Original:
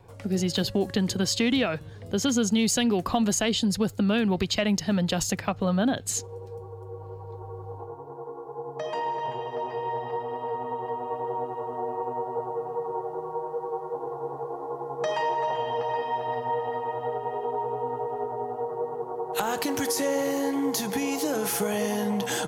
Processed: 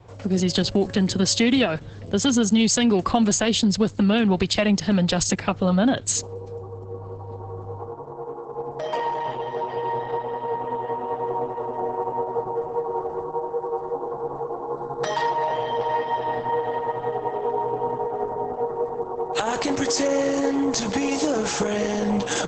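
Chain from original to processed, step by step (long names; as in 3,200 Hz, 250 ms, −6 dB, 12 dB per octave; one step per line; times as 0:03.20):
0:14.74–0:15.31: thirty-one-band graphic EQ 100 Hz +5 dB, 160 Hz +5 dB, 315 Hz +3 dB, 630 Hz −5 dB, 1,600 Hz +6 dB, 2,500 Hz −9 dB, 4,000 Hz +8 dB, 8,000 Hz +5 dB
level +5 dB
Opus 10 kbit/s 48,000 Hz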